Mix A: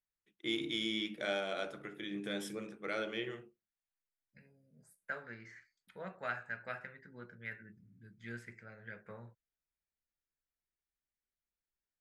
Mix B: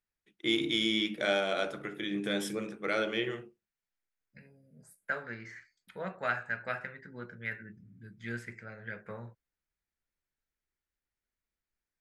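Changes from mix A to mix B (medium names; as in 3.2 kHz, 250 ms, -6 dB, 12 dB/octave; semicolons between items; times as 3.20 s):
first voice +7.0 dB; second voice +7.0 dB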